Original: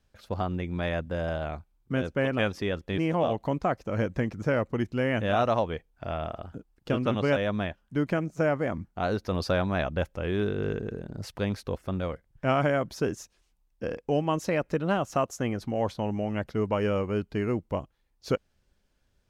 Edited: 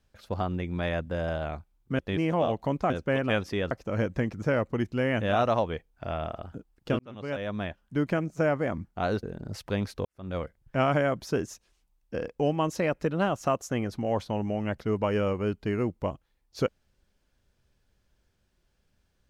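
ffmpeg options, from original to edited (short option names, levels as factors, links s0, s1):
-filter_complex "[0:a]asplit=7[s0][s1][s2][s3][s4][s5][s6];[s0]atrim=end=1.992[s7];[s1]atrim=start=2.798:end=3.712[s8];[s2]atrim=start=1.988:end=2.802[s9];[s3]atrim=start=3.708:end=6.99,asetpts=PTS-STARTPTS,afade=t=out:st=3.278:d=0.004:c=hsin[s10];[s4]atrim=start=6.99:end=9.232,asetpts=PTS-STARTPTS,afade=t=in:d=0.86[s11];[s5]atrim=start=10.918:end=11.74,asetpts=PTS-STARTPTS,afade=t=out:st=0.818:d=0.004:c=hsin[s12];[s6]atrim=start=11.74,asetpts=PTS-STARTPTS,afade=t=in:d=0.32:c=qua[s13];[s7][s8]acrossfade=d=0.004:c1=hsin:c2=hsin[s14];[s14][s9]acrossfade=d=0.004:c1=hsin:c2=hsin[s15];[s10][s11]concat=n=2:v=0:a=1[s16];[s15][s16]acrossfade=d=0.004:c1=hsin:c2=hsin[s17];[s12][s13]concat=n=2:v=0:a=1[s18];[s17][s18]acrossfade=d=0.004:c1=hsin:c2=hsin"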